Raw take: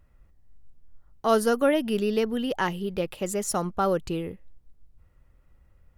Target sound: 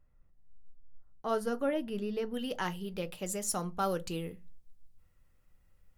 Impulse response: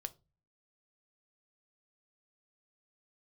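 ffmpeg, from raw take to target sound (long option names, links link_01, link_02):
-filter_complex "[0:a]asetnsamples=nb_out_samples=441:pad=0,asendcmd='2.34 highshelf g 7;3.79 highshelf g 12',highshelf=frequency=2500:gain=-5.5[link_01];[1:a]atrim=start_sample=2205,asetrate=61740,aresample=44100[link_02];[link_01][link_02]afir=irnorm=-1:irlink=0,volume=-3.5dB"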